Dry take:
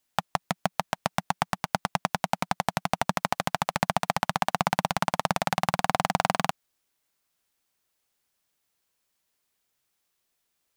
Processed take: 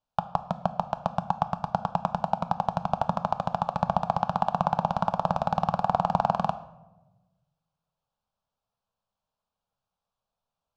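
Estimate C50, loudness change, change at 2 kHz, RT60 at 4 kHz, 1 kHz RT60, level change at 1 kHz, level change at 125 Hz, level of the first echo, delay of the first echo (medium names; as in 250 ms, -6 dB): 15.0 dB, 0.0 dB, -11.5 dB, 0.60 s, 0.95 s, +1.5 dB, +1.5 dB, no echo, no echo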